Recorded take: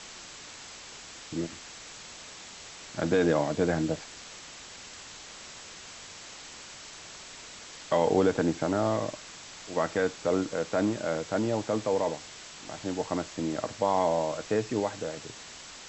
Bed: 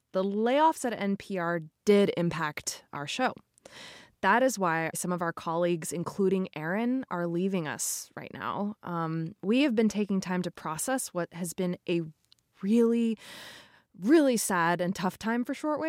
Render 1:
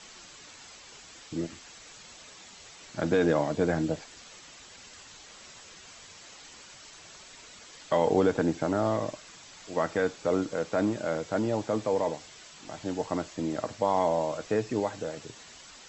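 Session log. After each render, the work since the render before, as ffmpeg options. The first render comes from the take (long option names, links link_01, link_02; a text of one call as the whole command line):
ffmpeg -i in.wav -af "afftdn=noise_reduction=7:noise_floor=-46" out.wav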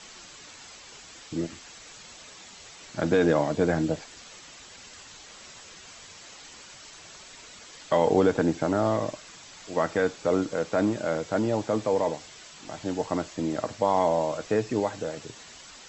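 ffmpeg -i in.wav -af "volume=2.5dB" out.wav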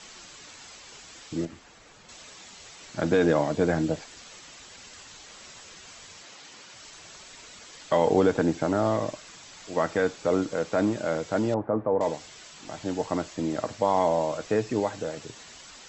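ffmpeg -i in.wav -filter_complex "[0:a]asettb=1/sr,asplit=3[link_01][link_02][link_03];[link_01]atrim=end=1.454[link_04];[link_02]atrim=start=1.45:end=2.09,asetpts=PTS-STARTPTS,afade=type=in:duration=0.004:curve=qsin,afade=type=out:start_time=0.636:duration=0.004:curve=qsin,highshelf=frequency=2300:gain=-11.5[link_05];[link_03]atrim=start=2.086[link_06];[link_04][link_05]acrossfade=duration=0.004:curve1=hsin:curve2=qsin[link_07];[link_07][link_06]acrossfade=duration=0.004:curve1=qsin:curve2=hsin,asettb=1/sr,asplit=3[link_08][link_09][link_10];[link_08]atrim=end=6.224[link_11];[link_09]atrim=start=6.22:end=6.76,asetpts=PTS-STARTPTS,afade=type=in:duration=0.004:curve=qsin,afade=type=out:start_time=0.536:duration=0.004:curve=qsin,highpass=110,lowpass=7100[link_12];[link_10]atrim=start=6.756[link_13];[link_11][link_12]acrossfade=duration=0.004:curve1=hsin:curve2=qsin[link_14];[link_14][link_13]acrossfade=duration=0.004:curve1=qsin:curve2=hsin,asettb=1/sr,asplit=3[link_15][link_16][link_17];[link_15]atrim=end=11.544[link_18];[link_16]atrim=start=11.54:end=12.01,asetpts=PTS-STARTPTS,afade=type=in:duration=0.004:curve=qsin,afade=type=out:start_time=0.466:duration=0.004:curve=qsin,lowpass=frequency=1400:width=0.5412,lowpass=frequency=1400:width=1.3066[link_19];[link_17]atrim=start=12.006[link_20];[link_18][link_19]acrossfade=duration=0.004:curve1=hsin:curve2=qsin[link_21];[link_21][link_20]acrossfade=duration=0.004:curve1=qsin:curve2=hsin" out.wav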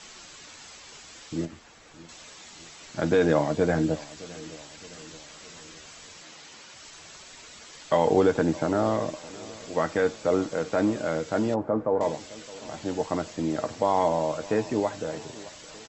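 ffmpeg -i in.wav -filter_complex "[0:a]asplit=2[link_01][link_02];[link_02]adelay=13,volume=-12dB[link_03];[link_01][link_03]amix=inputs=2:normalize=0,asplit=2[link_04][link_05];[link_05]adelay=615,lowpass=frequency=1800:poles=1,volume=-19dB,asplit=2[link_06][link_07];[link_07]adelay=615,lowpass=frequency=1800:poles=1,volume=0.53,asplit=2[link_08][link_09];[link_09]adelay=615,lowpass=frequency=1800:poles=1,volume=0.53,asplit=2[link_10][link_11];[link_11]adelay=615,lowpass=frequency=1800:poles=1,volume=0.53[link_12];[link_04][link_06][link_08][link_10][link_12]amix=inputs=5:normalize=0" out.wav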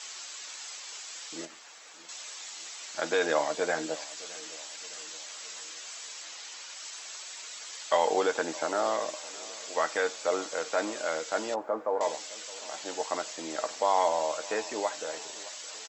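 ffmpeg -i in.wav -af "highpass=620,highshelf=frequency=4100:gain=8.5" out.wav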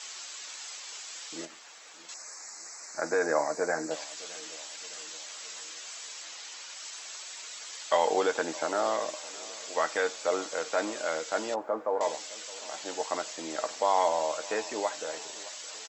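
ffmpeg -i in.wav -filter_complex "[0:a]asettb=1/sr,asplit=3[link_01][link_02][link_03];[link_01]atrim=end=2.144[link_04];[link_02]atrim=start=2.14:end=3.91,asetpts=PTS-STARTPTS,afade=type=in:duration=0.004:curve=qsin,afade=type=out:start_time=1.766:duration=0.004:curve=qsin,asuperstop=centerf=3200:order=4:qfactor=1.1[link_05];[link_03]atrim=start=3.906[link_06];[link_04][link_05]acrossfade=duration=0.004:curve1=hsin:curve2=qsin[link_07];[link_07][link_06]acrossfade=duration=0.004:curve1=qsin:curve2=hsin" out.wav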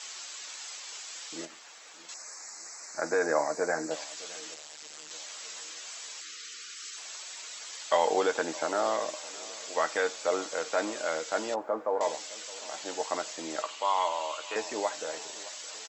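ffmpeg -i in.wav -filter_complex "[0:a]asettb=1/sr,asplit=3[link_01][link_02][link_03];[link_01]atrim=end=4.544[link_04];[link_02]atrim=start=4.54:end=5.11,asetpts=PTS-STARTPTS,afade=type=in:duration=0.004:curve=qsin,afade=type=out:start_time=0.566:duration=0.004:curve=qsin,tremolo=f=150:d=0.974[link_05];[link_03]atrim=start=5.106[link_06];[link_04][link_05]acrossfade=duration=0.004:curve1=hsin:curve2=qsin[link_07];[link_07][link_06]acrossfade=duration=0.004:curve1=qsin:curve2=hsin,asettb=1/sr,asplit=3[link_08][link_09][link_10];[link_08]atrim=end=6.214[link_11];[link_09]atrim=start=6.21:end=6.97,asetpts=PTS-STARTPTS,afade=type=in:duration=0.004:curve=qsin,afade=type=out:start_time=0.756:duration=0.004:curve=qsin,asuperstop=centerf=760:order=20:qfactor=1.2[link_12];[link_10]atrim=start=6.966[link_13];[link_11][link_12]acrossfade=duration=0.004:curve1=hsin:curve2=qsin[link_14];[link_14][link_13]acrossfade=duration=0.004:curve1=qsin:curve2=hsin,asettb=1/sr,asplit=3[link_15][link_16][link_17];[link_15]atrim=end=13.624[link_18];[link_16]atrim=start=13.62:end=14.56,asetpts=PTS-STARTPTS,afade=type=in:duration=0.004:curve=qsin,afade=type=out:start_time=0.936:duration=0.004:curve=qsin,highpass=460,equalizer=frequency=500:width_type=q:width=4:gain=-7,equalizer=frequency=720:width_type=q:width=4:gain=-8,equalizer=frequency=1100:width_type=q:width=4:gain=4,equalizer=frequency=1700:width_type=q:width=4:gain=-6,equalizer=frequency=2900:width_type=q:width=4:gain=8,equalizer=frequency=5500:width_type=q:width=4:gain=-8,lowpass=frequency=7300:width=0.5412,lowpass=frequency=7300:width=1.3066[link_19];[link_17]atrim=start=14.556[link_20];[link_18][link_19]acrossfade=duration=0.004:curve1=hsin:curve2=qsin[link_21];[link_21][link_20]acrossfade=duration=0.004:curve1=qsin:curve2=hsin" out.wav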